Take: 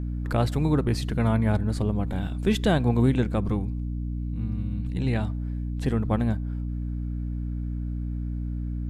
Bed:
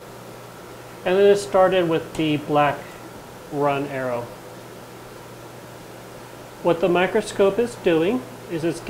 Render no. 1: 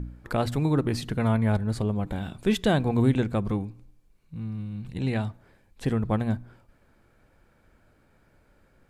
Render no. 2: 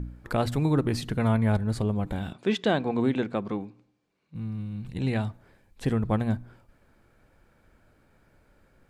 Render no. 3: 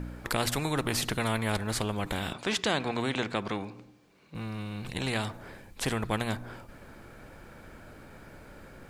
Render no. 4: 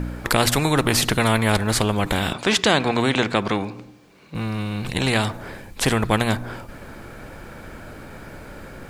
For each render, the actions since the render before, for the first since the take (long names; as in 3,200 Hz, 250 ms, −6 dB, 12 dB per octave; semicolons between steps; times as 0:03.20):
hum removal 60 Hz, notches 5
0:02.33–0:04.35: band-pass filter 220–5,100 Hz
every bin compressed towards the loudest bin 2 to 1
level +10.5 dB